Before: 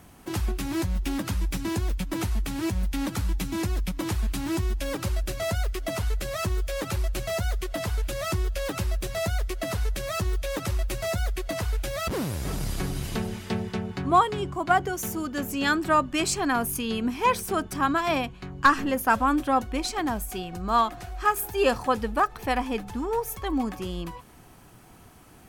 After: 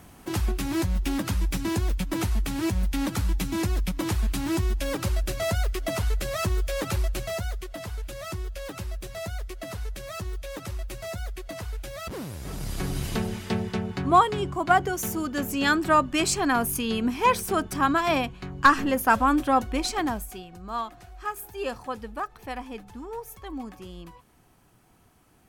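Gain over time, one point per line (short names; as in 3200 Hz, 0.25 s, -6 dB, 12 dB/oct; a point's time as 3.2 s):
7 s +1.5 dB
7.73 s -6.5 dB
12.41 s -6.5 dB
12.96 s +1.5 dB
20.02 s +1.5 dB
20.48 s -9 dB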